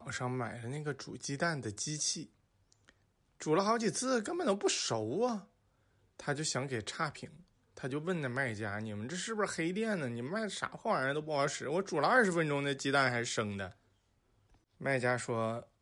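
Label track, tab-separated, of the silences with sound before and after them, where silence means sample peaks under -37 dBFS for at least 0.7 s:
2.220000	3.420000	silence
5.380000	6.200000	silence
13.670000	14.810000	silence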